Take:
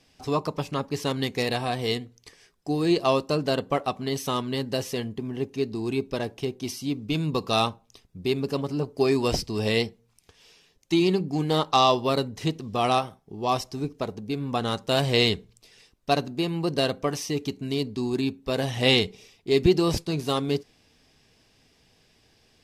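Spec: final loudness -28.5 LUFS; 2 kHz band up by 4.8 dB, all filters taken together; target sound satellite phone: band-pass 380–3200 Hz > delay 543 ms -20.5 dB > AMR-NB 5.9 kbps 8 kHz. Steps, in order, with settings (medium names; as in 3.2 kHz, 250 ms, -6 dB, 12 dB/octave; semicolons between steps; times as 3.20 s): band-pass 380–3200 Hz; peaking EQ 2 kHz +7.5 dB; delay 543 ms -20.5 dB; trim +0.5 dB; AMR-NB 5.9 kbps 8 kHz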